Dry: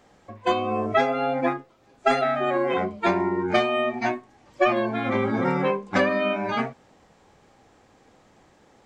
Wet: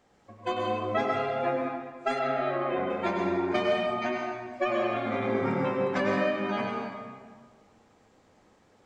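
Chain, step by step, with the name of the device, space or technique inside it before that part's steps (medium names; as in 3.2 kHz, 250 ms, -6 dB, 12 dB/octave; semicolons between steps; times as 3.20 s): stairwell (reverberation RT60 1.7 s, pre-delay 91 ms, DRR -1 dB); 2.19–2.90 s: distance through air 150 m; trim -8.5 dB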